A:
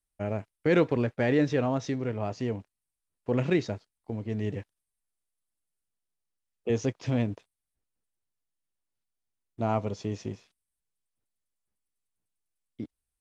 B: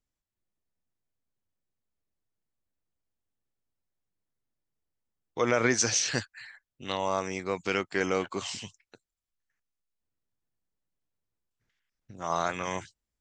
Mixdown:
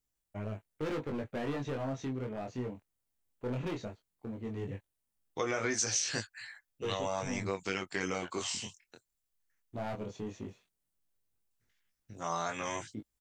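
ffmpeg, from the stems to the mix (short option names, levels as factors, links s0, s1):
-filter_complex "[0:a]equalizer=f=5100:t=o:w=0.2:g=-13,volume=20,asoftclip=hard,volume=0.0501,adelay=150,volume=0.75[s0];[1:a]highshelf=f=7700:g=11.5,volume=1.19[s1];[s0][s1]amix=inputs=2:normalize=0,flanger=delay=18.5:depth=5.8:speed=0.16,acompressor=threshold=0.0251:ratio=2.5"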